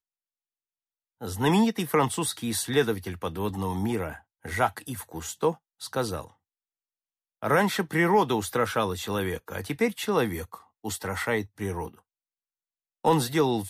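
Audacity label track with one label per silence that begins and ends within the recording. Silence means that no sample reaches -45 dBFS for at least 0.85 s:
6.280000	7.430000	silence
11.990000	13.050000	silence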